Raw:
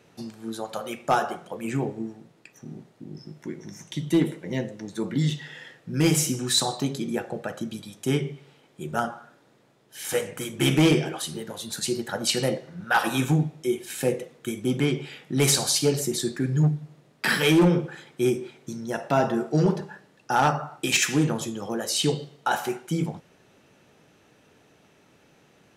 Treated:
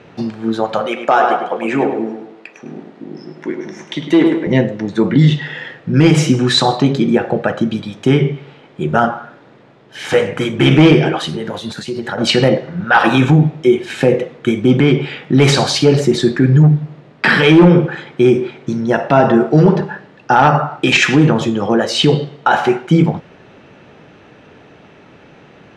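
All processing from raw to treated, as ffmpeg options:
-filter_complex "[0:a]asettb=1/sr,asplit=3[a][b][c];[a]atrim=end=0.864[d];[b]atrim=start=0.86:end=4.47,asetpts=PTS-STARTPTS,afade=t=in:d=0.004:c=qsin,afade=t=out:st=3.606:d=0.004:c=qsin,highpass=330,asplit=2[e][f];[f]adelay=103,lowpass=f=3.1k:p=1,volume=-7dB,asplit=2[g][h];[h]adelay=103,lowpass=f=3.1k:p=1,volume=0.4,asplit=2[i][j];[j]adelay=103,lowpass=f=3.1k:p=1,volume=0.4,asplit=2[k][l];[l]adelay=103,lowpass=f=3.1k:p=1,volume=0.4,asplit=2[m][n];[n]adelay=103,lowpass=f=3.1k:p=1,volume=0.4[o];[e][g][i][k][m][o]amix=inputs=6:normalize=0,atrim=end_sample=159201[p];[c]atrim=start=4.466[q];[d][p]acrossfade=d=0.004:c1=hsin:c2=qsin[r];[r][q]acrossfade=d=0.004:c1=qsin:c2=hsin,asettb=1/sr,asplit=3[s][t][u];[s]atrim=end=11.294[v];[t]atrim=start=11.29:end=12.18,asetpts=PTS-STARTPTS,afade=t=in:d=0.004:c=qsin,afade=t=out:st=0.886:d=0.004:c=qsin,highshelf=f=8.8k:g=8,acompressor=threshold=-33dB:ratio=8:attack=3.2:release=140:knee=1:detection=peak[w];[u]atrim=start=12.176[x];[v][w]acrossfade=d=0.004:c1=hsin:c2=qsin[y];[y][x]acrossfade=d=0.004:c1=qsin:c2=hsin,lowpass=3k,alimiter=level_in=17dB:limit=-1dB:release=50:level=0:latency=1,volume=-1dB"

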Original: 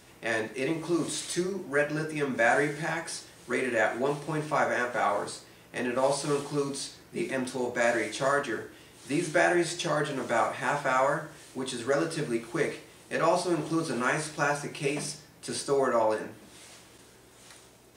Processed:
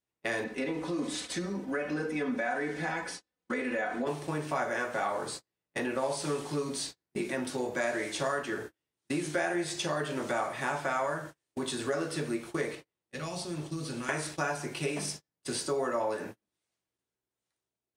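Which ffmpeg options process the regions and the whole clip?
-filter_complex "[0:a]asettb=1/sr,asplit=3[a][b][c];[a]atrim=end=0.444[d];[b]atrim=start=0.44:end=4.07,asetpts=PTS-STARTPTS,afade=t=in:d=0.004:c=qsin,afade=t=out:st=3.626:d=0.004:c=qsin,acompressor=threshold=-27dB:ratio=2.5:attack=3.2:release=140:knee=1:detection=peak,aemphasis=mode=reproduction:type=50kf,aecho=1:1:4:0.73,atrim=end_sample=160083[e];[c]atrim=start=4.066[f];[d][e]acrossfade=d=0.004:c1=hsin:c2=qsin[g];[g][f]acrossfade=d=0.004:c1=qsin:c2=hsin,asettb=1/sr,asplit=3[h][i][j];[h]atrim=end=12.754[k];[i]atrim=start=12.75:end=14.09,asetpts=PTS-STARTPTS,afade=t=in:d=0.004:c=qsin,afade=t=out:st=1.336:d=0.004:c=qsin,acrossover=split=190|3000[l][m][n];[m]acompressor=threshold=-43dB:ratio=4:attack=3.2:release=140:knee=2.83:detection=peak[o];[l][o][n]amix=inputs=3:normalize=0,highshelf=f=5.4k:g=-7[p];[j]atrim=start=14.086[q];[k][p]acrossfade=d=0.004:c1=hsin:c2=qsin[r];[r][q]acrossfade=d=0.004:c1=qsin:c2=hsin,agate=range=-39dB:threshold=-40dB:ratio=16:detection=peak,acompressor=threshold=-33dB:ratio=2.5,volume=2dB"

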